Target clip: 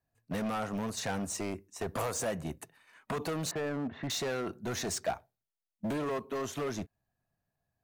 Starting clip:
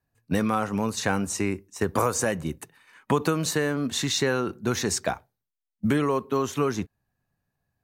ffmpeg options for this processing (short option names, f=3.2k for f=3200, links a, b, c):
-filter_complex "[0:a]asettb=1/sr,asplit=3[a][b][c];[a]atrim=end=3.514[d];[b]atrim=start=3.51:end=4.1,asetpts=PTS-STARTPTS,afade=t=in:d=0.004:c=qsin,afade=t=out:st=0.586:d=0.004:c=qsin,lowpass=f=2k:w=0.5412,lowpass=f=2k:w=1.3066[e];[c]atrim=start=4.096[f];[d][e]acrossfade=d=0.004:c1=hsin:c2=qsin[g];[g][f]acrossfade=d=0.004:c1=qsin:c2=hsin,asoftclip=type=hard:threshold=-25dB,equalizer=f=660:t=o:w=0.31:g=8,volume=-6dB"